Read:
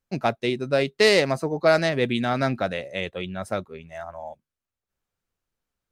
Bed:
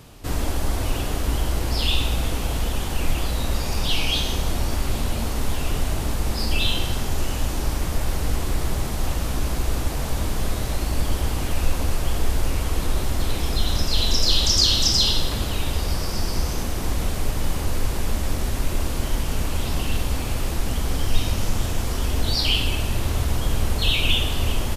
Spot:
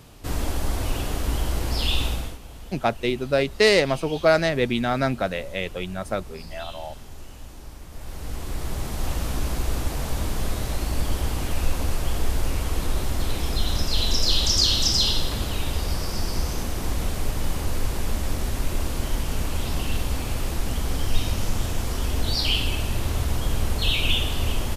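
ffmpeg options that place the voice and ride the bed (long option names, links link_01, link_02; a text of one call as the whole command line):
ffmpeg -i stem1.wav -i stem2.wav -filter_complex "[0:a]adelay=2600,volume=0.5dB[link_01];[1:a]volume=13dB,afade=type=out:start_time=2.06:duration=0.32:silence=0.177828,afade=type=in:start_time=7.89:duration=1.27:silence=0.177828[link_02];[link_01][link_02]amix=inputs=2:normalize=0" out.wav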